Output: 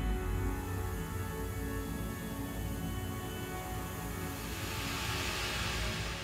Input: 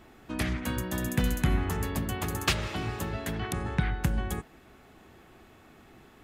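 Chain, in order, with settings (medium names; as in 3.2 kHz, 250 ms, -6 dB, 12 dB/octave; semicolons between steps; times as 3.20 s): Paulstretch 5.9×, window 0.50 s, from 1.58 s; trim -7.5 dB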